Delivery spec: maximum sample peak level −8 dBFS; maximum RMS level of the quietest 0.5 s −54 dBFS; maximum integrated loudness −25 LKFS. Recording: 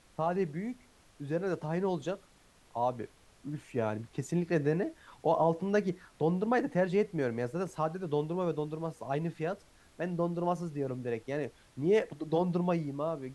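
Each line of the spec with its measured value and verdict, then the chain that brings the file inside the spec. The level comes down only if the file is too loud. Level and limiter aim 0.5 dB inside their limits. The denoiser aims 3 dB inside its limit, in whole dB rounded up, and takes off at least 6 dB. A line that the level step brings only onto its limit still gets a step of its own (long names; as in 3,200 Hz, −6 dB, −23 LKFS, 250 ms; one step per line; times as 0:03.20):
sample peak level −16.0 dBFS: in spec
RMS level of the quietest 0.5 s −62 dBFS: in spec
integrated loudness −33.0 LKFS: in spec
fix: no processing needed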